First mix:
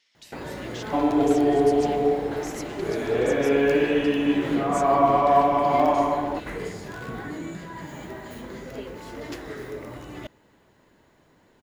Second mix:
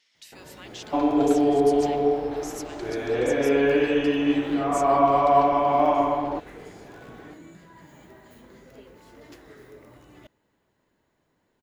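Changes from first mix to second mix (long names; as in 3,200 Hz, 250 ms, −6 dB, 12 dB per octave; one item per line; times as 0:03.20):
first sound −12.0 dB
master: add high-shelf EQ 10,000 Hz +4.5 dB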